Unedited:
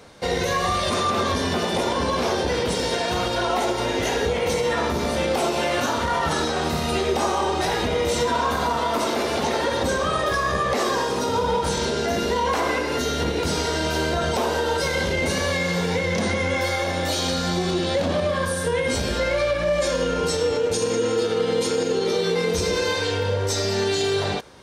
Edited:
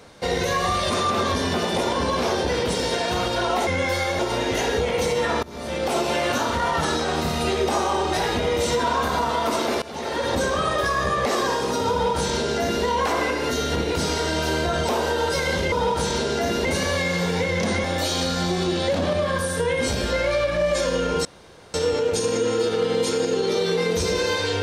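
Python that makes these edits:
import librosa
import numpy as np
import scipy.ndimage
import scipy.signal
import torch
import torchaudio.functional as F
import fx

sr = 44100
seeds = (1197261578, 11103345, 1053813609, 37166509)

y = fx.edit(x, sr, fx.fade_in_from(start_s=4.91, length_s=0.55, floor_db=-23.0),
    fx.fade_in_from(start_s=9.3, length_s=0.49, floor_db=-19.0),
    fx.duplicate(start_s=11.39, length_s=0.93, to_s=15.2),
    fx.move(start_s=16.39, length_s=0.52, to_s=3.67),
    fx.insert_room_tone(at_s=20.32, length_s=0.49), tone=tone)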